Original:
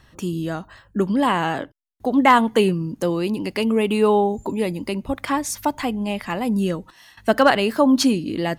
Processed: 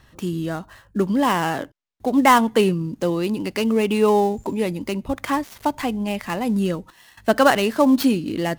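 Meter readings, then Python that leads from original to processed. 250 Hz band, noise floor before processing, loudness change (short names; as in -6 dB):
0.0 dB, -54 dBFS, 0.0 dB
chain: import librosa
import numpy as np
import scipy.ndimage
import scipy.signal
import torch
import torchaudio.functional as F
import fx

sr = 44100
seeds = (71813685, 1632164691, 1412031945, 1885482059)

y = fx.dead_time(x, sr, dead_ms=0.07)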